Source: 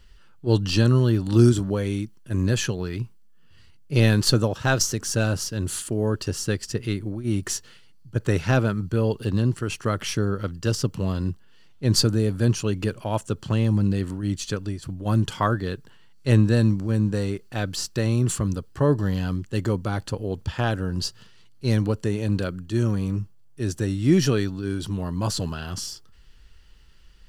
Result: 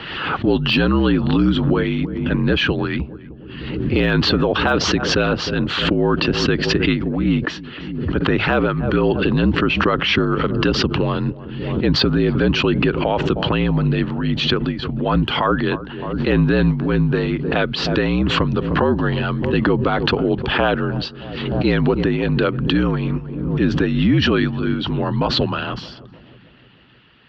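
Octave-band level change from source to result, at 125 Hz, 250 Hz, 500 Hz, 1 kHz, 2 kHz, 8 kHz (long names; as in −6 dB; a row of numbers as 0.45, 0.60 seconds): +1.5, +7.0, +7.0, +10.0, +11.0, −8.0 decibels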